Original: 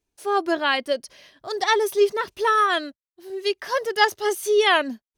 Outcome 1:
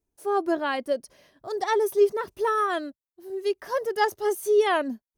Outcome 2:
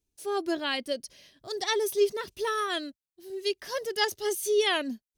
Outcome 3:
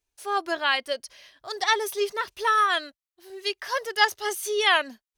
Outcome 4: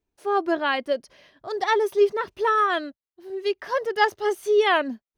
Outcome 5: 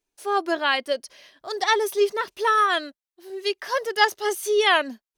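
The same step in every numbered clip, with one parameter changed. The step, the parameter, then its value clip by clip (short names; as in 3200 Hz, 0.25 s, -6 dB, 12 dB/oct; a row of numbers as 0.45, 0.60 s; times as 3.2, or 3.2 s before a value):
bell, frequency: 3300, 1100, 220, 12000, 82 Hz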